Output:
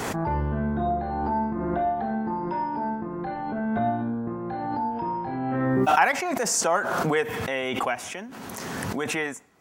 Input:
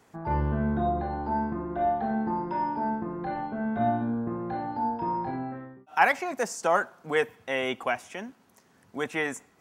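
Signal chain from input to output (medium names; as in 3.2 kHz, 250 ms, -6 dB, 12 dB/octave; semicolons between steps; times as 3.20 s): 0.85–1.81 s: doubling 50 ms -8 dB; 4.90–5.55 s: mains buzz 120 Hz, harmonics 27, -59 dBFS -4 dB/octave; swell ahead of each attack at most 20 dB/s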